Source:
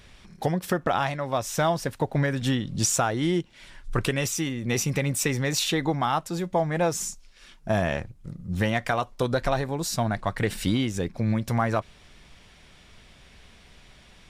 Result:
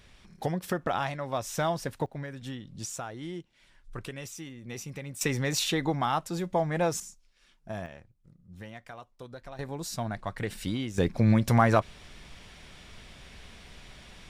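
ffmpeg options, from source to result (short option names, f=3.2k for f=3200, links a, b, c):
-af "asetnsamples=n=441:p=0,asendcmd='2.06 volume volume -14dB;5.21 volume volume -3dB;7 volume volume -13dB;7.86 volume volume -19.5dB;9.59 volume volume -7.5dB;10.98 volume volume 3dB',volume=-5dB"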